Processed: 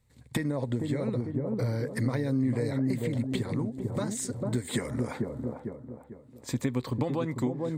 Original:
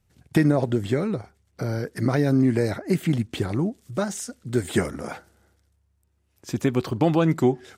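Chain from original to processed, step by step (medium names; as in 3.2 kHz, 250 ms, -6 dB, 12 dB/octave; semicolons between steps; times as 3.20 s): on a send: feedback echo behind a low-pass 447 ms, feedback 35%, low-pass 740 Hz, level -4 dB; on the sum: compression, threshold -26 dBFS, peak gain reduction 12.5 dB; rippled EQ curve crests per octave 1, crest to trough 8 dB; trim -1 dB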